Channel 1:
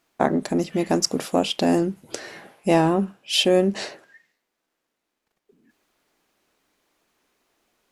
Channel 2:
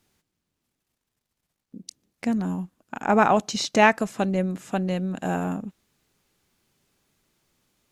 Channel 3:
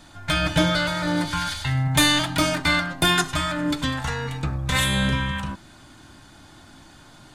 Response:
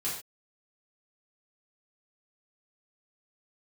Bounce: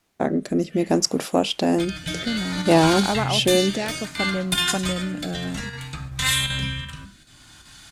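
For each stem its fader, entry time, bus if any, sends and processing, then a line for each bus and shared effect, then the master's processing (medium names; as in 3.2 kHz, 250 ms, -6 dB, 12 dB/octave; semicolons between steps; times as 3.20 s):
+2.0 dB, 0.00 s, no send, none
+1.0 dB, 0.00 s, no send, compression 3:1, threshold -22 dBFS, peak gain reduction 8.5 dB
+1.0 dB, 1.50 s, send -8.5 dB, square tremolo 2.6 Hz, depth 60%, duty 90%; level rider gain up to 12 dB; amplifier tone stack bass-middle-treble 5-5-5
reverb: on, pre-delay 3 ms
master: rotary cabinet horn 0.6 Hz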